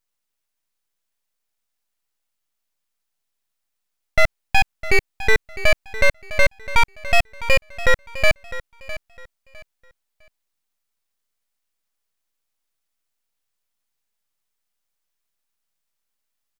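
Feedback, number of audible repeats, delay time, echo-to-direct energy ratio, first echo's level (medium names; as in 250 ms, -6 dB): 25%, 2, 656 ms, -14.5 dB, -15.0 dB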